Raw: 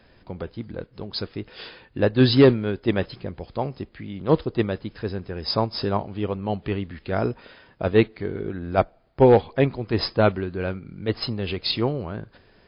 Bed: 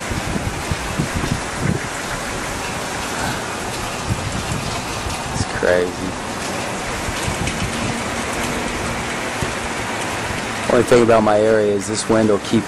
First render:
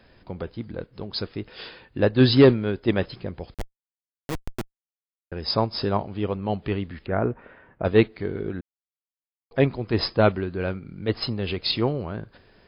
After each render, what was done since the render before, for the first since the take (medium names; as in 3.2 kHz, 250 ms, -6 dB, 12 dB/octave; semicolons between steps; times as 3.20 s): 3.54–5.32 s: Schmitt trigger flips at -16.5 dBFS; 7.06–7.85 s: low-pass 2.1 kHz 24 dB/octave; 8.61–9.51 s: mute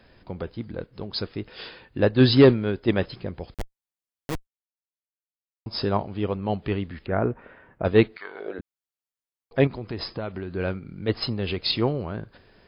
4.47–5.66 s: mute; 8.16–8.58 s: resonant high-pass 1.4 kHz -> 450 Hz, resonance Q 3.4; 9.67–10.52 s: compression, threshold -28 dBFS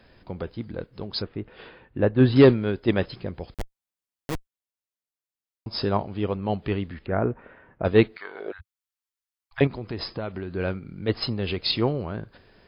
1.22–2.36 s: distance through air 470 m; 6.94–7.83 s: distance through air 130 m; 8.52–9.61 s: inverse Chebyshev band-stop 160–570 Hz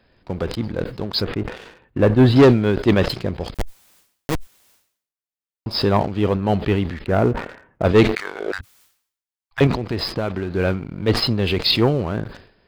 waveshaping leveller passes 2; decay stretcher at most 99 dB/s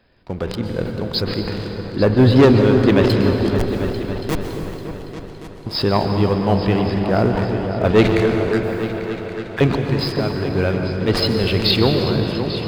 delay with an opening low-pass 281 ms, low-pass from 400 Hz, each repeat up 2 oct, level -6 dB; plate-style reverb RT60 3.1 s, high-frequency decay 0.7×, pre-delay 110 ms, DRR 5 dB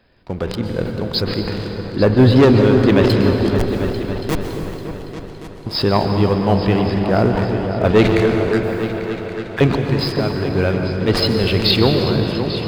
trim +1.5 dB; peak limiter -3 dBFS, peak gain reduction 2.5 dB